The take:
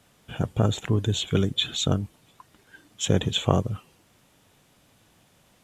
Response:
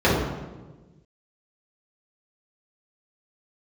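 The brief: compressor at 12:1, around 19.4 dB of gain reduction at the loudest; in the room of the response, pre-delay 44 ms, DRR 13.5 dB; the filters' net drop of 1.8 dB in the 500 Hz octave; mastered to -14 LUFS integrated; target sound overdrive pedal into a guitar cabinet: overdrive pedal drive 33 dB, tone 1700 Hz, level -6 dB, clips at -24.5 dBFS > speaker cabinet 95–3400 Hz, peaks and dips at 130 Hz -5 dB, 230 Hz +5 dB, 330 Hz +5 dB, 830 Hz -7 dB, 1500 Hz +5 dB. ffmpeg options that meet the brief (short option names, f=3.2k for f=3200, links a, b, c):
-filter_complex "[0:a]equalizer=f=500:t=o:g=-3.5,acompressor=threshold=-37dB:ratio=12,asplit=2[a][b];[1:a]atrim=start_sample=2205,adelay=44[c];[b][c]afir=irnorm=-1:irlink=0,volume=-35.5dB[d];[a][d]amix=inputs=2:normalize=0,asplit=2[e][f];[f]highpass=f=720:p=1,volume=33dB,asoftclip=type=tanh:threshold=-24.5dB[g];[e][g]amix=inputs=2:normalize=0,lowpass=f=1.7k:p=1,volume=-6dB,highpass=95,equalizer=f=130:t=q:w=4:g=-5,equalizer=f=230:t=q:w=4:g=5,equalizer=f=330:t=q:w=4:g=5,equalizer=f=830:t=q:w=4:g=-7,equalizer=f=1.5k:t=q:w=4:g=5,lowpass=f=3.4k:w=0.5412,lowpass=f=3.4k:w=1.3066,volume=22.5dB"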